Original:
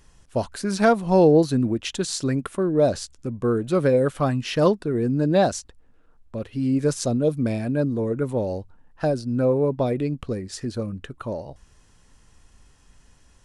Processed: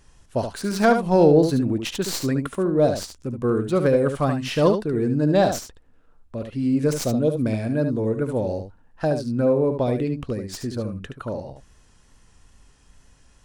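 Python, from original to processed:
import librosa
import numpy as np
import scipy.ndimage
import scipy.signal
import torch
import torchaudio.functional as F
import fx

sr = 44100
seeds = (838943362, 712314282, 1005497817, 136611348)

y = fx.tracing_dist(x, sr, depth_ms=0.087)
y = fx.wow_flutter(y, sr, seeds[0], rate_hz=2.1, depth_cents=29.0)
y = y + 10.0 ** (-7.5 / 20.0) * np.pad(y, (int(73 * sr / 1000.0), 0))[:len(y)]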